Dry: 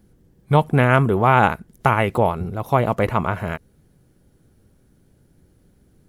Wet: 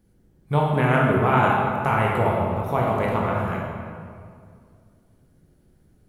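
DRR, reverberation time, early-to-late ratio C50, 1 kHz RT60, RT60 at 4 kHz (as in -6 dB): -3.5 dB, 2.2 s, -0.5 dB, 2.1 s, 1.4 s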